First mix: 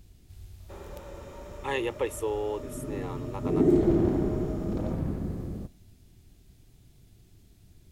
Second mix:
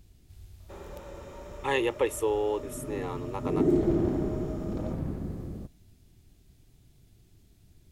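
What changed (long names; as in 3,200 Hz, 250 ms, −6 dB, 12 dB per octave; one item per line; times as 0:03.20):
speech +3.0 dB
second sound: send −11.0 dB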